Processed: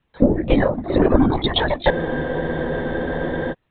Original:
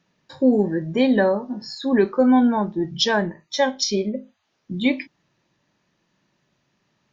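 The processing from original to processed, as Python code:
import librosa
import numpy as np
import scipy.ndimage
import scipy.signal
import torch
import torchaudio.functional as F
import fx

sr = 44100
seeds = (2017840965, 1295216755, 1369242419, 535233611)

p1 = fx.transient(x, sr, attack_db=9, sustain_db=5)
p2 = fx.rider(p1, sr, range_db=4, speed_s=0.5)
p3 = p1 + (p2 * 10.0 ** (-2.5 / 20.0))
p4 = fx.echo_pitch(p3, sr, ms=87, semitones=2, count=2, db_per_echo=-6.0)
p5 = fx.stretch_vocoder(p4, sr, factor=0.52)
p6 = fx.lpc_vocoder(p5, sr, seeds[0], excitation='whisper', order=16)
p7 = fx.spec_freeze(p6, sr, seeds[1], at_s=1.93, hold_s=1.58)
y = p7 * 10.0 ** (-6.0 / 20.0)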